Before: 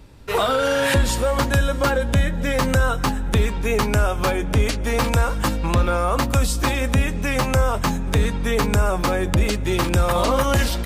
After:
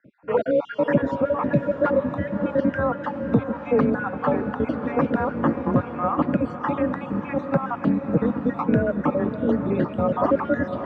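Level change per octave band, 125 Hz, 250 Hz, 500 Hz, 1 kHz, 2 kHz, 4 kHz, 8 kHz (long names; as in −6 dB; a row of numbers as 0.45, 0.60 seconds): −8.0 dB, +3.0 dB, −0.5 dB, −3.5 dB, −8.0 dB, below −20 dB, below −35 dB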